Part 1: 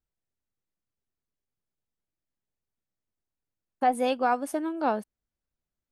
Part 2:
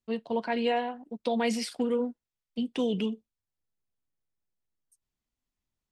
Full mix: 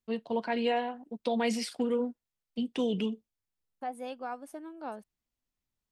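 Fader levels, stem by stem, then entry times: −13.5, −1.5 decibels; 0.00, 0.00 seconds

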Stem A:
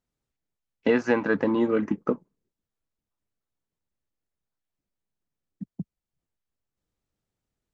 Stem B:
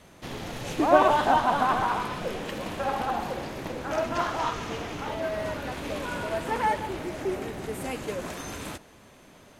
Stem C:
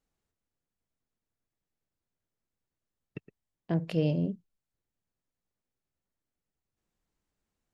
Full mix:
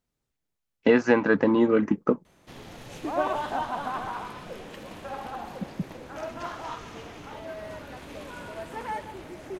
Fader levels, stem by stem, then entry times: +2.5 dB, −8.0 dB, muted; 0.00 s, 2.25 s, muted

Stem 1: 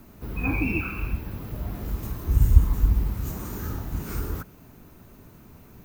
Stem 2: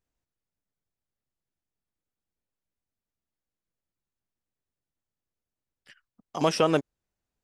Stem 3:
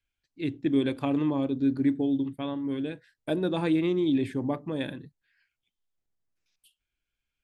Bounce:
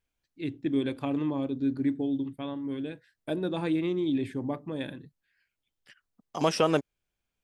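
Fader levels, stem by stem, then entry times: muted, −1.5 dB, −3.0 dB; muted, 0.00 s, 0.00 s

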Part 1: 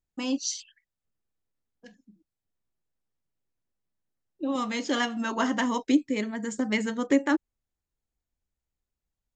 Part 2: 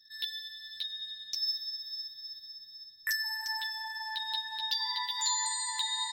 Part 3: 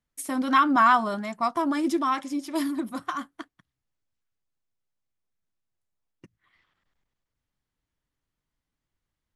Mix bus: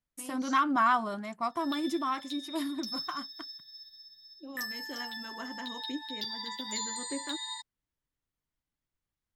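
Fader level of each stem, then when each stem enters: −16.0, −5.5, −6.5 decibels; 0.00, 1.50, 0.00 seconds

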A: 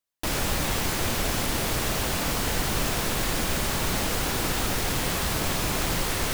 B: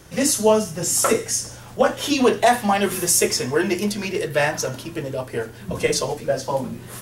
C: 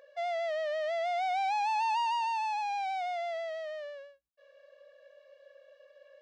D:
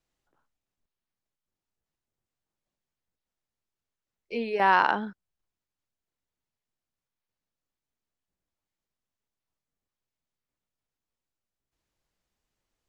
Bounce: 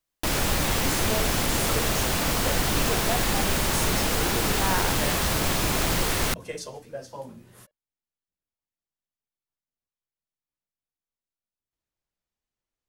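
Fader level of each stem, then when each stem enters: +2.0, −15.0, −14.5, −8.5 decibels; 0.00, 0.65, 1.50, 0.00 seconds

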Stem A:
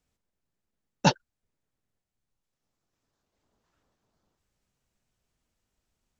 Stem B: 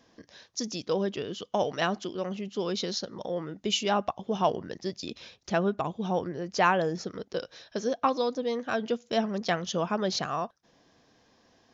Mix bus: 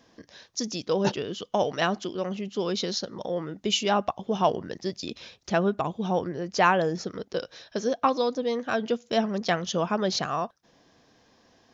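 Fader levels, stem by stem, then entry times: −8.0, +2.5 decibels; 0.00, 0.00 seconds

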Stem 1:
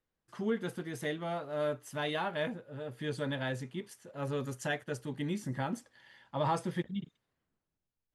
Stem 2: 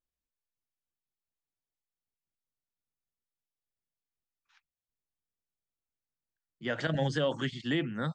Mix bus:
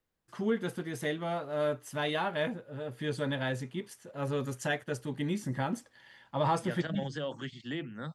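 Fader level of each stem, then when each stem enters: +2.5, −7.0 decibels; 0.00, 0.00 seconds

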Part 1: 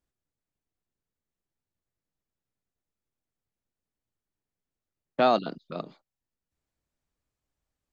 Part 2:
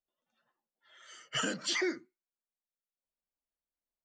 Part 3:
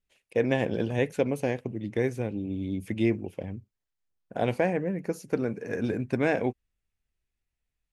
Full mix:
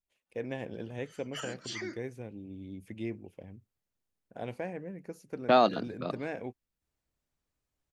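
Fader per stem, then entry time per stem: −0.5, −7.5, −12.0 decibels; 0.30, 0.00, 0.00 seconds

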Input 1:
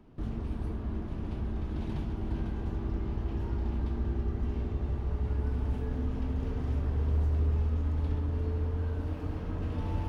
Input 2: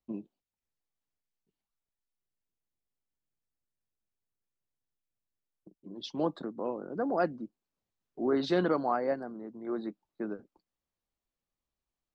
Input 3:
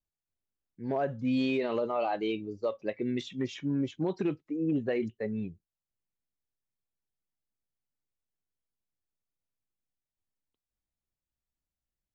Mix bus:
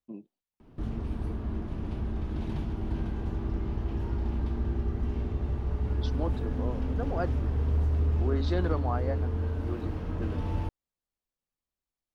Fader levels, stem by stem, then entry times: +1.5 dB, −4.0 dB, muted; 0.60 s, 0.00 s, muted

